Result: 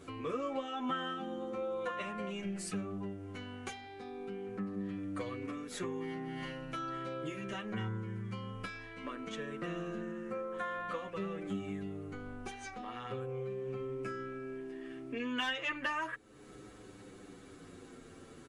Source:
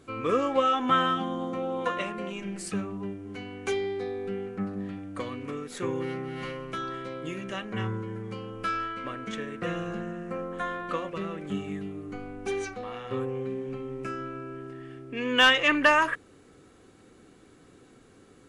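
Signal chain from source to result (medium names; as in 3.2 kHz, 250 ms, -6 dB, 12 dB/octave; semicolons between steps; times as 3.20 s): compression 2.5:1, threshold -44 dBFS, peak gain reduction 18.5 dB; endless flanger 8.2 ms -0.34 Hz; trim +5.5 dB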